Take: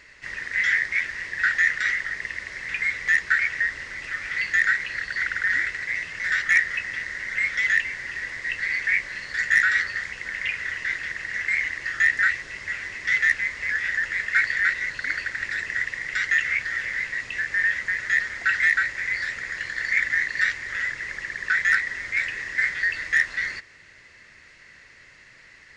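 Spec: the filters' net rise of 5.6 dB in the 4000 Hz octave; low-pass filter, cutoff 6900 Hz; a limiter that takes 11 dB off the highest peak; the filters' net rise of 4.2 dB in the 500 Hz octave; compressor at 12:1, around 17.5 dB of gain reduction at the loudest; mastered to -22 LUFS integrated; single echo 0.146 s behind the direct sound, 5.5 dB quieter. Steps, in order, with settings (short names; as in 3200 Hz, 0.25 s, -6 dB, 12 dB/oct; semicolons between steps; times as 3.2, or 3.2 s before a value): LPF 6900 Hz; bell 500 Hz +5 dB; bell 4000 Hz +7.5 dB; compressor 12:1, threshold -31 dBFS; limiter -30.5 dBFS; echo 0.146 s -5.5 dB; gain +14.5 dB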